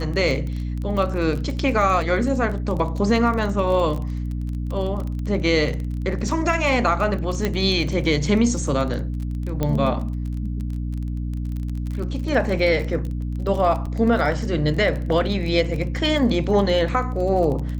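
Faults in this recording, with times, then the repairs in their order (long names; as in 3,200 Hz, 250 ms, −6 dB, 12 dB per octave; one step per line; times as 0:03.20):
surface crackle 26 per second −27 dBFS
mains hum 60 Hz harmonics 5 −26 dBFS
0:07.45: click −9 dBFS
0:09.63: click −10 dBFS
0:13.86–0:13.87: drop-out 6.8 ms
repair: click removal
hum removal 60 Hz, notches 5
repair the gap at 0:13.86, 6.8 ms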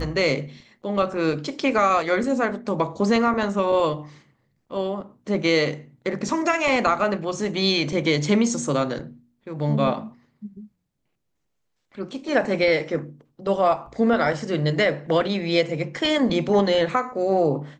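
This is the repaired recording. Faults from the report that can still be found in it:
none of them is left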